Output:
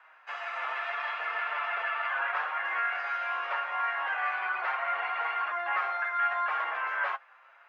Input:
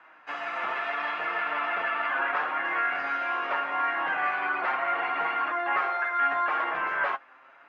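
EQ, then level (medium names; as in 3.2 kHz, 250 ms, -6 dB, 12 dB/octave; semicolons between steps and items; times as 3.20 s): Bessel high-pass 730 Hz, order 8; -2.0 dB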